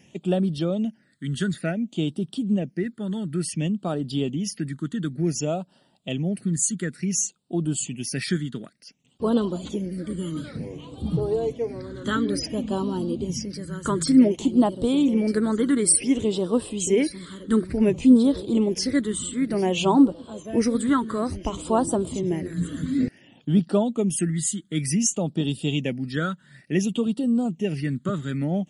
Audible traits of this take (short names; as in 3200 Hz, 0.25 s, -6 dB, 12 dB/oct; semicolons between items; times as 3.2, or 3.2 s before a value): phasing stages 8, 0.56 Hz, lowest notch 730–2100 Hz